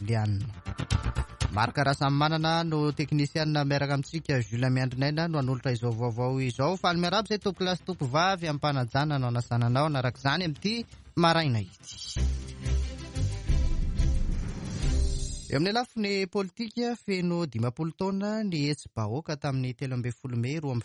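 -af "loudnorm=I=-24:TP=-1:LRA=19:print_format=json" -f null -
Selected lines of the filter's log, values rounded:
"input_i" : "-29.1",
"input_tp" : "-9.4",
"input_lra" : "4.0",
"input_thresh" : "-39.2",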